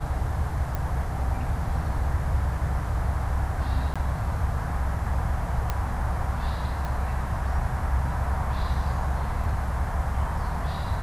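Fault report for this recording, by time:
0:00.75: click −16 dBFS
0:03.94–0:03.96: drop-out 16 ms
0:05.70: click −13 dBFS
0:06.85: click

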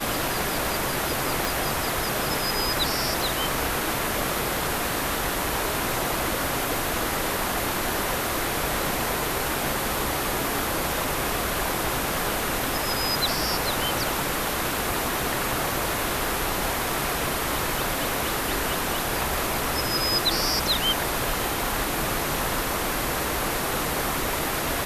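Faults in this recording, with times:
0:01.45: click

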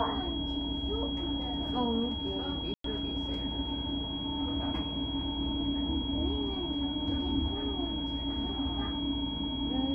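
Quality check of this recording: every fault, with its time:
whistle 3,300 Hz −37 dBFS
0:02.74–0:02.84: drop-out 103 ms

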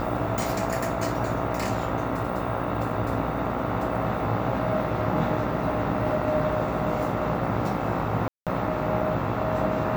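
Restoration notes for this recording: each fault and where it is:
mains buzz 60 Hz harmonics 23 −31 dBFS
0:08.28–0:08.47: drop-out 187 ms

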